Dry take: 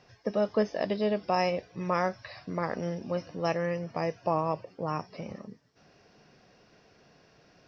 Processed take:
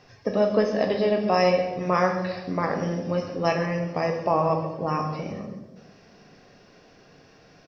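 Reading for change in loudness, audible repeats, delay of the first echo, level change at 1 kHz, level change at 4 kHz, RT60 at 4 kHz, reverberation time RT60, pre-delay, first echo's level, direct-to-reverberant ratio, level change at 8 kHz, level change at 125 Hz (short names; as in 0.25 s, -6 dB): +6.5 dB, 1, 0.132 s, +6.0 dB, +6.0 dB, 0.75 s, 1.2 s, 3 ms, -13.5 dB, 2.5 dB, n/a, +7.0 dB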